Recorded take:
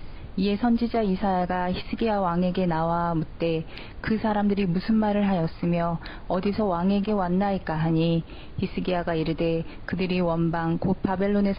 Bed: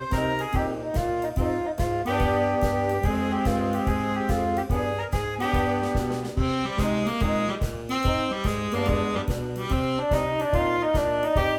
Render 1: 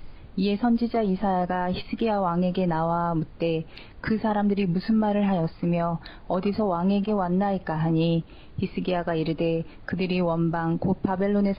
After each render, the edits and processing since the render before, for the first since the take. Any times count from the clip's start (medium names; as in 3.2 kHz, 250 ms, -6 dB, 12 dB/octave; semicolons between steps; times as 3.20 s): noise print and reduce 6 dB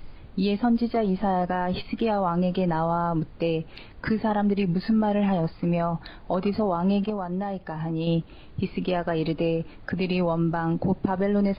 7.10–8.07 s: gain -5.5 dB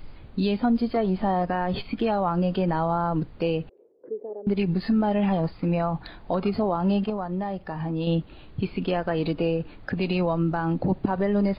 3.69–4.47 s: Butterworth band-pass 440 Hz, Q 2.9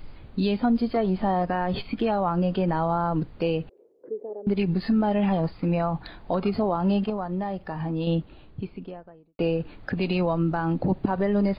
2.02–2.83 s: distance through air 54 m; 7.90–9.39 s: studio fade out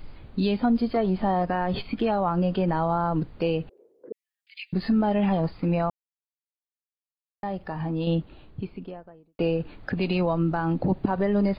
4.12–4.73 s: steep high-pass 2.1 kHz 48 dB/octave; 5.90–7.43 s: mute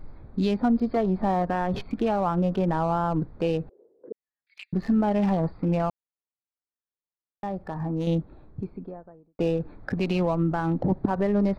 local Wiener filter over 15 samples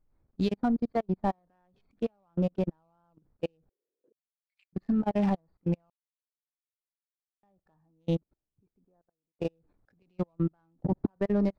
level held to a coarse grid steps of 23 dB; upward expansion 2.5:1, over -37 dBFS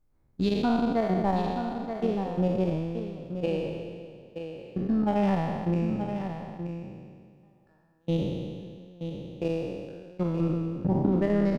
spectral sustain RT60 1.94 s; delay 927 ms -8.5 dB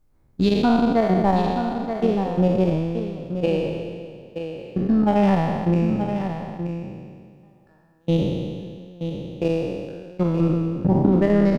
trim +7 dB